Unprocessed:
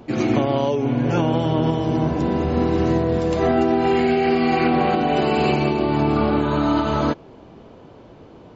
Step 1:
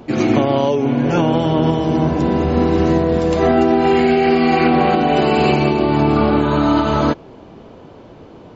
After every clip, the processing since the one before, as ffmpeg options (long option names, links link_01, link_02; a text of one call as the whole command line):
ffmpeg -i in.wav -af "bandreject=frequency=60:width_type=h:width=6,bandreject=frequency=120:width_type=h:width=6,volume=4.5dB" out.wav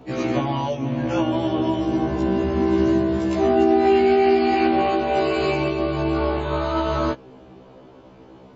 ffmpeg -i in.wav -af "afftfilt=real='re*1.73*eq(mod(b,3),0)':imag='im*1.73*eq(mod(b,3),0)':win_size=2048:overlap=0.75,volume=-3.5dB" out.wav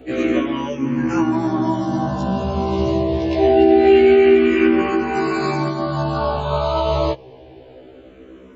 ffmpeg -i in.wav -filter_complex "[0:a]asplit=2[link_01][link_02];[link_02]afreqshift=-0.25[link_03];[link_01][link_03]amix=inputs=2:normalize=1,volume=6dB" out.wav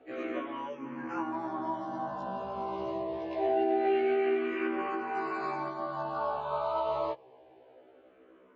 ffmpeg -i in.wav -af "bandpass=frequency=1000:width_type=q:width=1:csg=0,volume=-9dB" out.wav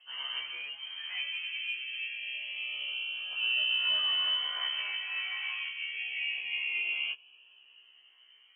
ffmpeg -i in.wav -af "lowpass=frequency=2900:width_type=q:width=0.5098,lowpass=frequency=2900:width_type=q:width=0.6013,lowpass=frequency=2900:width_type=q:width=0.9,lowpass=frequency=2900:width_type=q:width=2.563,afreqshift=-3400,volume=-2dB" out.wav